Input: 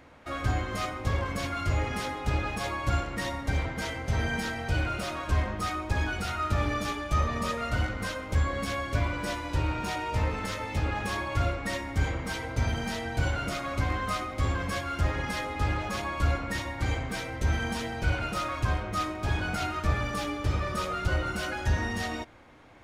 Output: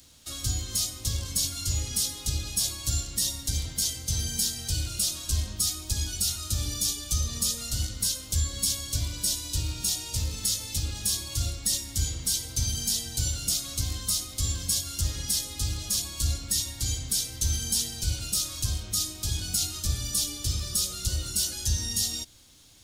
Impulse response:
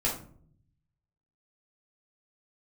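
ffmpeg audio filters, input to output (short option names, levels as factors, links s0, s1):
-filter_complex "[0:a]equalizer=f=780:w=0.35:g=-15,acrossover=split=130|650|3700[s0][s1][s2][s3];[s2]alimiter=level_in=8.91:limit=0.0631:level=0:latency=1:release=230,volume=0.112[s4];[s0][s1][s4][s3]amix=inputs=4:normalize=0,aexciter=amount=4.1:drive=9.4:freq=3200"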